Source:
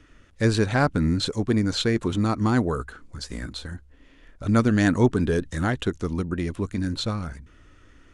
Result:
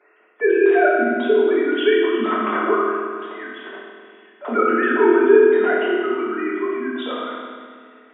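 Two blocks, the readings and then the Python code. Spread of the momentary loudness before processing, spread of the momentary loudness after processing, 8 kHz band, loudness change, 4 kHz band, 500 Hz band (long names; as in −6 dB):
15 LU, 19 LU, below −40 dB, +6.0 dB, −1.5 dB, +12.5 dB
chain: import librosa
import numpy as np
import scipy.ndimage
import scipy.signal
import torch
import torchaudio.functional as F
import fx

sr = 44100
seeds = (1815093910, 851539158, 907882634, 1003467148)

y = fx.sine_speech(x, sr)
y = scipy.signal.sosfilt(scipy.signal.butter(4, 360.0, 'highpass', fs=sr, output='sos'), y)
y = fx.rev_fdn(y, sr, rt60_s=1.8, lf_ratio=1.4, hf_ratio=0.95, size_ms=14.0, drr_db=-7.5)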